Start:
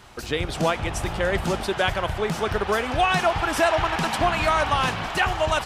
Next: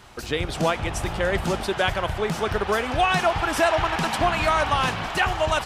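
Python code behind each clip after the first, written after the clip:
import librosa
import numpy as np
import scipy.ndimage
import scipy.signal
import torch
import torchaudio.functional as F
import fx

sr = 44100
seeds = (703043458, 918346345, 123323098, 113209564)

y = x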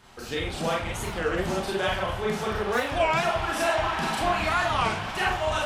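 y = fx.rev_schroeder(x, sr, rt60_s=0.35, comb_ms=29, drr_db=-3.5)
y = fx.record_warp(y, sr, rpm=33.33, depth_cents=250.0)
y = y * librosa.db_to_amplitude(-8.0)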